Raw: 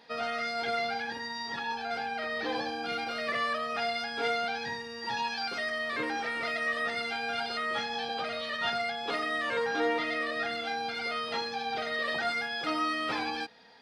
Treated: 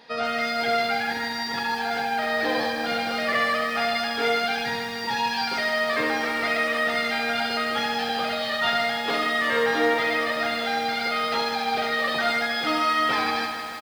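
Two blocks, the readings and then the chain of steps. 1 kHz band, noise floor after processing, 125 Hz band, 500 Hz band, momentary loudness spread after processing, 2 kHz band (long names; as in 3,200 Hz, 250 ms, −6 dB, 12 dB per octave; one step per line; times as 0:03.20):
+8.0 dB, −30 dBFS, +8.0 dB, +8.0 dB, 4 LU, +8.0 dB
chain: repeating echo 69 ms, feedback 48%, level −7.5 dB
feedback echo at a low word length 154 ms, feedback 80%, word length 8 bits, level −9 dB
level +6 dB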